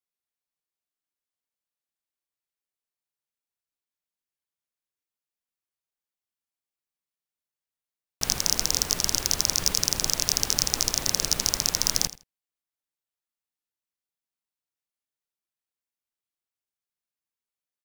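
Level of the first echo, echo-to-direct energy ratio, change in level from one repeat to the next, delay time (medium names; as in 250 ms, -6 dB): -16.5 dB, -16.5 dB, -15.0 dB, 81 ms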